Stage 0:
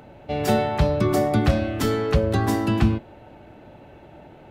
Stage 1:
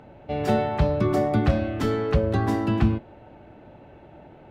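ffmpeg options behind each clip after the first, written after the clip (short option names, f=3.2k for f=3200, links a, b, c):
-af "lowpass=f=2.6k:p=1,volume=-1.5dB"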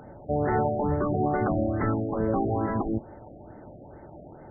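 -af "afftfilt=real='re*lt(hypot(re,im),0.447)':imag='im*lt(hypot(re,im),0.447)':win_size=1024:overlap=0.75,afftfilt=real='re*lt(b*sr/1024,740*pow(2200/740,0.5+0.5*sin(2*PI*2.3*pts/sr)))':imag='im*lt(b*sr/1024,740*pow(2200/740,0.5+0.5*sin(2*PI*2.3*pts/sr)))':win_size=1024:overlap=0.75,volume=2dB"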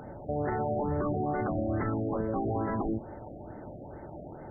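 -af "alimiter=level_in=1dB:limit=-24dB:level=0:latency=1:release=46,volume=-1dB,volume=2dB"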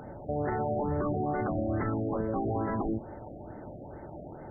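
-af anull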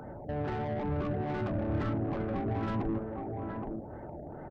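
-filter_complex "[0:a]aecho=1:1:820:0.447,acrossover=split=260[a][b];[b]asoftclip=type=tanh:threshold=-34dB[c];[a][c]amix=inputs=2:normalize=0"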